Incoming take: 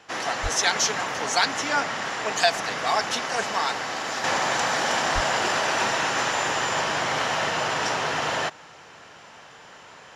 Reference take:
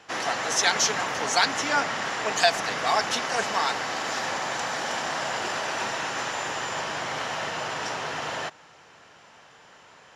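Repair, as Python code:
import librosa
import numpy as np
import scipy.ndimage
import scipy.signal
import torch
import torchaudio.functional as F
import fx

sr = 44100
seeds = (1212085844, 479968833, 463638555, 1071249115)

y = fx.highpass(x, sr, hz=140.0, slope=24, at=(0.42, 0.54), fade=0.02)
y = fx.highpass(y, sr, hz=140.0, slope=24, at=(5.14, 5.26), fade=0.02)
y = fx.gain(y, sr, db=fx.steps((0.0, 0.0), (4.24, -5.5)))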